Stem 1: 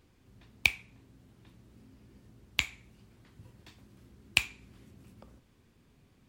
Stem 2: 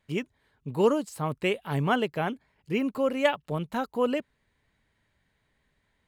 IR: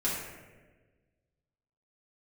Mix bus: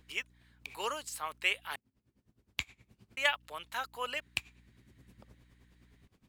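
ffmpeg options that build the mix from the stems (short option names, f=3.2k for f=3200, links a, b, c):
-filter_complex "[0:a]aeval=exprs='val(0)*pow(10,-19*(0.5-0.5*cos(2*PI*9.6*n/s))/20)':c=same,volume=1.5dB[a];[1:a]highpass=1.5k,aeval=exprs='val(0)+0.000501*(sin(2*PI*60*n/s)+sin(2*PI*2*60*n/s)/2+sin(2*PI*3*60*n/s)/3+sin(2*PI*4*60*n/s)/4+sin(2*PI*5*60*n/s)/5)':c=same,volume=2.5dB,asplit=3[b][c][d];[b]atrim=end=1.76,asetpts=PTS-STARTPTS,afade=t=out:st=1.756:d=0.004:c=hsin[e];[c]atrim=start=1.76:end=3.17,asetpts=PTS-STARTPTS,volume=0[f];[d]atrim=start=3.17,asetpts=PTS-STARTPTS,afade=t=in:d=0.004:c=hsin[g];[e][f][g]concat=n=3:v=0:a=1,asplit=2[h][i];[i]apad=whole_len=277001[j];[a][j]sidechaincompress=threshold=-43dB:ratio=6:attack=7.7:release=1160[k];[k][h]amix=inputs=2:normalize=0"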